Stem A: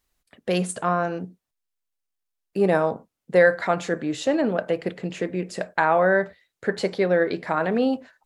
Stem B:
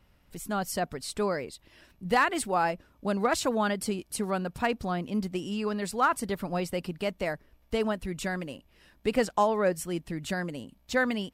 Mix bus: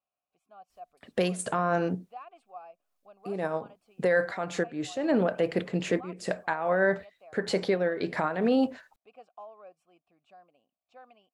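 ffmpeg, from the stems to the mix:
ffmpeg -i stem1.wav -i stem2.wav -filter_complex "[0:a]alimiter=limit=-13.5dB:level=0:latency=1:release=348,adelay=700,volume=3dB[link_01];[1:a]asplit=3[link_02][link_03][link_04];[link_02]bandpass=frequency=730:width_type=q:width=8,volume=0dB[link_05];[link_03]bandpass=frequency=1090:width_type=q:width=8,volume=-6dB[link_06];[link_04]bandpass=frequency=2440:width_type=q:width=8,volume=-9dB[link_07];[link_05][link_06][link_07]amix=inputs=3:normalize=0,volume=-13dB,asplit=2[link_08][link_09];[link_09]apad=whole_len=395119[link_10];[link_01][link_10]sidechaincompress=threshold=-58dB:ratio=10:attack=33:release=237[link_11];[link_11][link_08]amix=inputs=2:normalize=0,alimiter=limit=-15.5dB:level=0:latency=1:release=24" out.wav

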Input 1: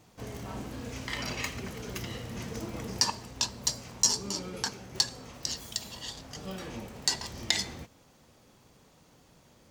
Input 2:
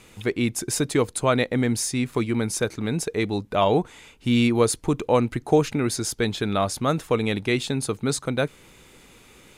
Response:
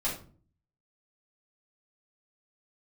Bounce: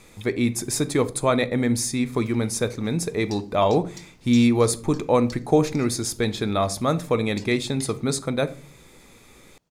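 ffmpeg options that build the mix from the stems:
-filter_complex "[0:a]adelay=300,volume=-15.5dB,asplit=3[link_01][link_02][link_03];[link_01]atrim=end=1.09,asetpts=PTS-STARTPTS,afade=type=out:start_time=1.086:duration=0.004:curve=hsin[link_04];[link_02]atrim=start=1.09:end=2,asetpts=PTS-STARTPTS,volume=0[link_05];[link_03]atrim=start=2,asetpts=PTS-STARTPTS,afade=type=in:duration=0.004:curve=hsin[link_06];[link_04][link_05][link_06]concat=n=3:v=0:a=1[link_07];[1:a]equalizer=frequency=1500:width=4.8:gain=-4,bandreject=frequency=2900:width=5,volume=-0.5dB,asplit=2[link_08][link_09];[link_09]volume=-16dB[link_10];[2:a]atrim=start_sample=2205[link_11];[link_10][link_11]afir=irnorm=-1:irlink=0[link_12];[link_07][link_08][link_12]amix=inputs=3:normalize=0"

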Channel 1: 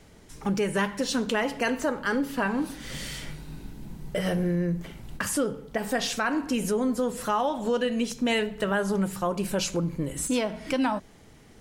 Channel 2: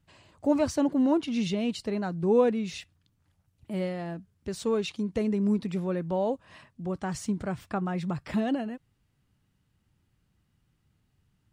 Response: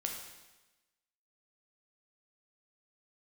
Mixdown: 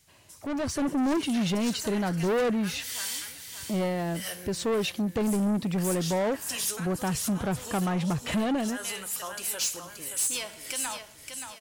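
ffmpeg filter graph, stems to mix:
-filter_complex "[0:a]aderivative,volume=-1dB,asplit=3[link_01][link_02][link_03];[link_02]volume=-17.5dB[link_04];[link_03]volume=-7.5dB[link_05];[1:a]volume=-2.5dB,asplit=2[link_06][link_07];[link_07]apad=whole_len=511738[link_08];[link_01][link_08]sidechaincompress=threshold=-45dB:ratio=8:attack=5.5:release=133[link_09];[2:a]atrim=start_sample=2205[link_10];[link_04][link_10]afir=irnorm=-1:irlink=0[link_11];[link_05]aecho=0:1:577|1154|1731|2308|2885:1|0.37|0.137|0.0507|0.0187[link_12];[link_09][link_06][link_11][link_12]amix=inputs=4:normalize=0,asoftclip=type=tanh:threshold=-32dB,dynaudnorm=framelen=140:gausssize=9:maxgain=9dB"

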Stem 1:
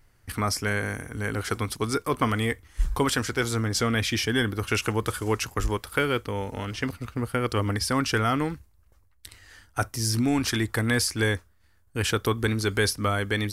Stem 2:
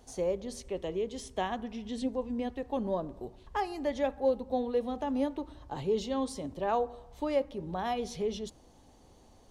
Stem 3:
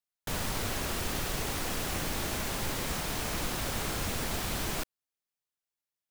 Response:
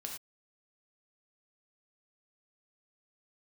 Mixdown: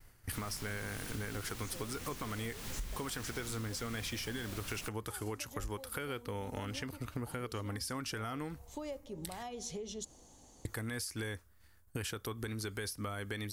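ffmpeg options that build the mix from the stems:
-filter_complex "[0:a]agate=range=-33dB:threshold=-57dB:ratio=3:detection=peak,volume=1.5dB,asplit=3[link_01][link_02][link_03];[link_01]atrim=end=9.43,asetpts=PTS-STARTPTS,afade=type=out:start_time=9.426:duration=0.004:curve=hsin[link_04];[link_02]atrim=start=9.43:end=10.65,asetpts=PTS-STARTPTS,volume=0[link_05];[link_03]atrim=start=10.65,asetpts=PTS-STARTPTS,afade=type=in:duration=0.004:curve=hsin[link_06];[link_04][link_05][link_06]concat=n=3:v=0:a=1[link_07];[1:a]equalizer=frequency=6900:width=1.9:gain=11.5,acompressor=threshold=-36dB:ratio=6,adelay=1550,volume=-2.5dB[link_08];[2:a]equalizer=frequency=620:width=0.74:gain=-7.5,adelay=50,volume=-5dB[link_09];[link_07][link_08]amix=inputs=2:normalize=0,highshelf=frequency=9600:gain=9.5,alimiter=limit=-20dB:level=0:latency=1:release=485,volume=0dB[link_10];[link_09][link_10]amix=inputs=2:normalize=0,acompressor=threshold=-37dB:ratio=6"

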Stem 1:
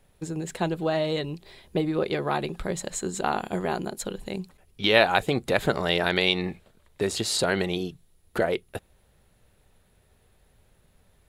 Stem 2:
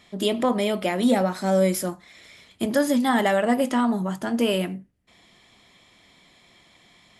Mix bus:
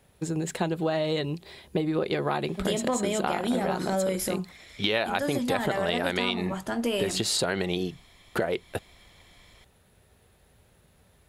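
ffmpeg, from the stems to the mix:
ffmpeg -i stem1.wav -i stem2.wav -filter_complex "[0:a]highpass=54,volume=3dB[link_01];[1:a]asubboost=boost=9.5:cutoff=55,adelay=2450,volume=-1dB[link_02];[link_01][link_02]amix=inputs=2:normalize=0,acompressor=threshold=-23dB:ratio=6" out.wav

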